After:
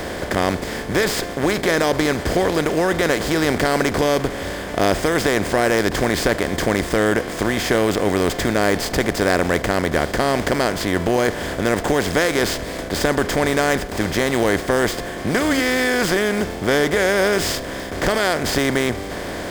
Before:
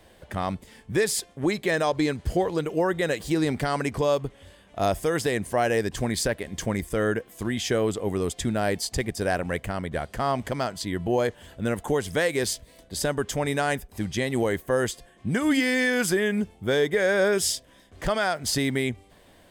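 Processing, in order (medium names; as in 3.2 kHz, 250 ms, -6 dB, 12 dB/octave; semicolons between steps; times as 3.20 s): spectral levelling over time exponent 0.4; sliding maximum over 3 samples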